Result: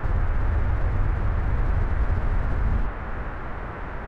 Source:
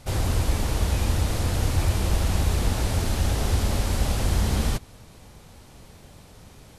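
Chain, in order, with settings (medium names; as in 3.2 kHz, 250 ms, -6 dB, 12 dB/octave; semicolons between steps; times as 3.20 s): low-pass 2.6 kHz 6 dB/octave; tilt EQ -3.5 dB/octave; hum notches 50/100/150/200/250/300 Hz; peak limiter -6 dBFS, peak gain reduction 8.5 dB; compression 3:1, threshold -27 dBFS, peak gain reduction 13.5 dB; band noise 210–1700 Hz -40 dBFS; time stretch by phase-locked vocoder 0.6×; delay 410 ms -11.5 dB; trim +4 dB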